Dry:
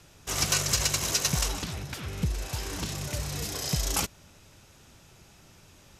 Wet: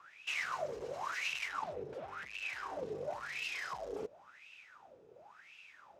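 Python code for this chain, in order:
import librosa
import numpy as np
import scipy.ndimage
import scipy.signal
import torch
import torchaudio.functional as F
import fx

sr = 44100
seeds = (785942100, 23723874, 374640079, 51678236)

y = np.clip(x, -10.0 ** (-32.0 / 20.0), 10.0 ** (-32.0 / 20.0))
y = fx.wah_lfo(y, sr, hz=0.94, low_hz=430.0, high_hz=2700.0, q=12.0)
y = F.gain(torch.from_numpy(y), 15.0).numpy()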